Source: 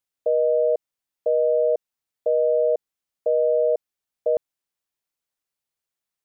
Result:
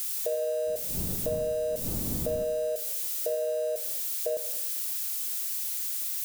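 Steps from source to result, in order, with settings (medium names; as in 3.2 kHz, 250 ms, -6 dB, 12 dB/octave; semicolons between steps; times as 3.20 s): zero-crossing glitches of -23.5 dBFS; 0.66–2.42 s: wind noise 220 Hz -26 dBFS; compression, threshold -22 dBFS, peak gain reduction 6 dB; Schroeder reverb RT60 1.1 s, combs from 28 ms, DRR 8.5 dB; trim -4.5 dB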